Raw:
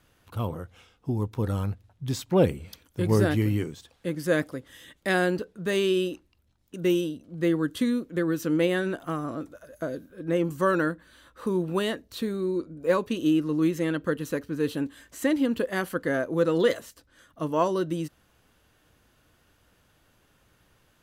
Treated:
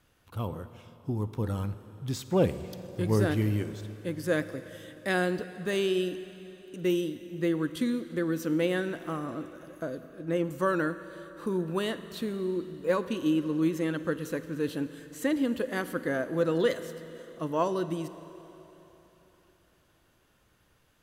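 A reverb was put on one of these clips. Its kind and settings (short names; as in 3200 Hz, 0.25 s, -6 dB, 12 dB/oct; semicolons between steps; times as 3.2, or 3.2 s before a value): Schroeder reverb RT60 3.7 s, DRR 12 dB; gain -3.5 dB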